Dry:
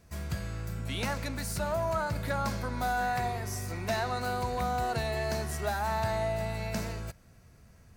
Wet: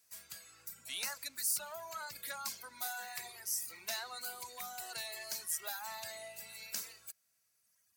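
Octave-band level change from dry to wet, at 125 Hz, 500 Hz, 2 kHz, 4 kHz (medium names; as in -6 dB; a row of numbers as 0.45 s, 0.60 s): -35.0 dB, -19.0 dB, -9.0 dB, -2.0 dB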